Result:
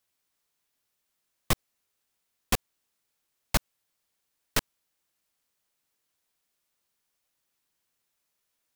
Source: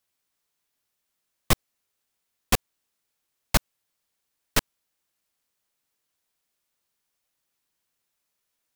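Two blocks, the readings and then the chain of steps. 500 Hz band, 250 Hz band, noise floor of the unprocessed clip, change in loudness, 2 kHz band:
-4.5 dB, -4.0 dB, -80 dBFS, -4.0 dB, -4.0 dB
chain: limiter -11.5 dBFS, peak gain reduction 5.5 dB

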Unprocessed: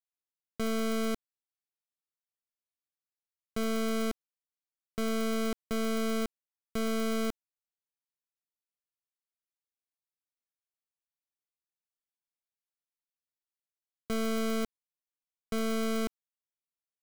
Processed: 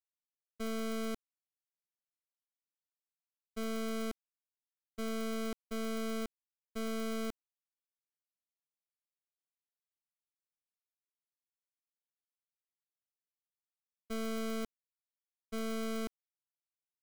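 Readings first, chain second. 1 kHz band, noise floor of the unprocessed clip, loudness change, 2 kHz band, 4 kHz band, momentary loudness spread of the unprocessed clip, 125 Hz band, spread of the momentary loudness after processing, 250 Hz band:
-6.5 dB, under -85 dBFS, -6.5 dB, -6.5 dB, -6.5 dB, 9 LU, n/a, 9 LU, -6.5 dB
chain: expander -23 dBFS; gain +7 dB

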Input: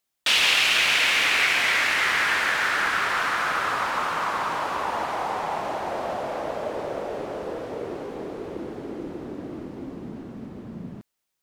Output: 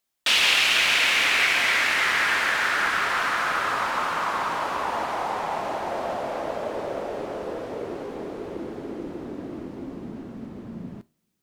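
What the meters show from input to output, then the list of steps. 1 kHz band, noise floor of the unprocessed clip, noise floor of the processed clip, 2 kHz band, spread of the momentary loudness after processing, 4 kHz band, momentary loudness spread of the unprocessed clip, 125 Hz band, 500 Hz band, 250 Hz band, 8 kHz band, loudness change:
0.0 dB, -80 dBFS, -72 dBFS, 0.0 dB, 19 LU, 0.0 dB, 19 LU, -1.0 dB, 0.0 dB, +0.5 dB, 0.0 dB, 0.0 dB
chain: two-slope reverb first 0.28 s, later 2.3 s, from -28 dB, DRR 15 dB

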